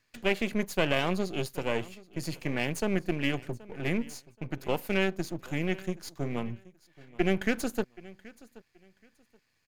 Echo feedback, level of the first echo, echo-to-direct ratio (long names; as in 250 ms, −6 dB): 24%, −21.0 dB, −21.0 dB